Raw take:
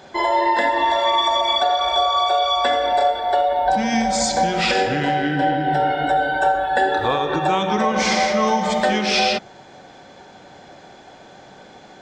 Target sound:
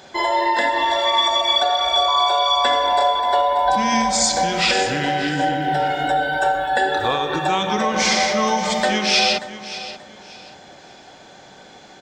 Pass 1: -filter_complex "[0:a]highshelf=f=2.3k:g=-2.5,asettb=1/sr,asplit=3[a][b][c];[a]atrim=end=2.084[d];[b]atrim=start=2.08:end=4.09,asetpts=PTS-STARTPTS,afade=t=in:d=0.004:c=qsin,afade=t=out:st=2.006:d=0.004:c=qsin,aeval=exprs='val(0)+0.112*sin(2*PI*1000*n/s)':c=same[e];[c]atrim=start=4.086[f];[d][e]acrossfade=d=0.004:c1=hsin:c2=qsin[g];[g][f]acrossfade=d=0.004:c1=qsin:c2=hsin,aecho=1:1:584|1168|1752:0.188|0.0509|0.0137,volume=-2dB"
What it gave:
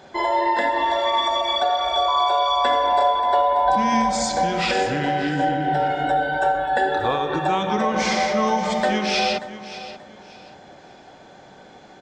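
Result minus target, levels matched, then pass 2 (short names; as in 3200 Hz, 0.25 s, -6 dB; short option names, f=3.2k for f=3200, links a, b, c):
4000 Hz band -4.5 dB
-filter_complex "[0:a]highshelf=f=2.3k:g=7.5,asettb=1/sr,asplit=3[a][b][c];[a]atrim=end=2.084[d];[b]atrim=start=2.08:end=4.09,asetpts=PTS-STARTPTS,afade=t=in:d=0.004:c=qsin,afade=t=out:st=2.006:d=0.004:c=qsin,aeval=exprs='val(0)+0.112*sin(2*PI*1000*n/s)':c=same[e];[c]atrim=start=4.086[f];[d][e]acrossfade=d=0.004:c1=hsin:c2=qsin[g];[g][f]acrossfade=d=0.004:c1=qsin:c2=hsin,aecho=1:1:584|1168|1752:0.188|0.0509|0.0137,volume=-2dB"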